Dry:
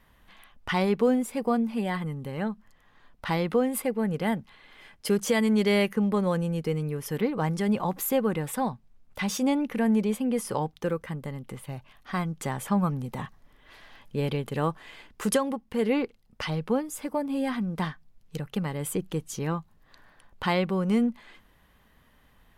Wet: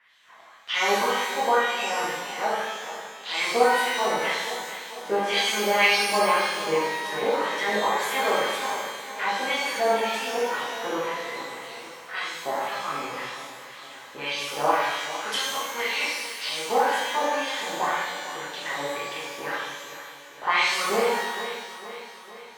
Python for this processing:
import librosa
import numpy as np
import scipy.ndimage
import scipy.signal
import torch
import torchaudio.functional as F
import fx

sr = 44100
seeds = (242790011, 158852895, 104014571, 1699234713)

p1 = fx.spec_clip(x, sr, under_db=12)
p2 = fx.wah_lfo(p1, sr, hz=1.9, low_hz=640.0, high_hz=4000.0, q=2.4)
p3 = p2 + fx.echo_feedback(p2, sr, ms=455, feedback_pct=57, wet_db=-12.5, dry=0)
p4 = fx.rev_shimmer(p3, sr, seeds[0], rt60_s=1.1, semitones=12, shimmer_db=-8, drr_db=-8.5)
y = p4 * 10.0 ** (2.0 / 20.0)